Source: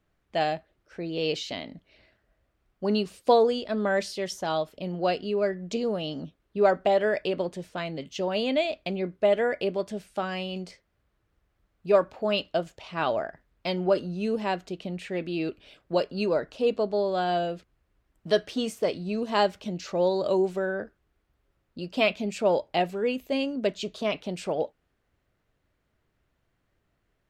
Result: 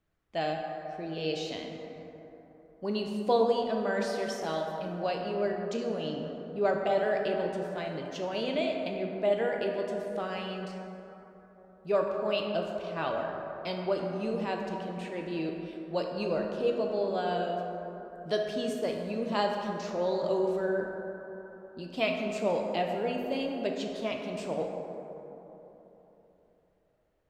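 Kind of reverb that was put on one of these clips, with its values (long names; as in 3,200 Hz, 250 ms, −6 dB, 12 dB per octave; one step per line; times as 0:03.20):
dense smooth reverb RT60 3.6 s, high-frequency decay 0.35×, DRR 1 dB
level −6.5 dB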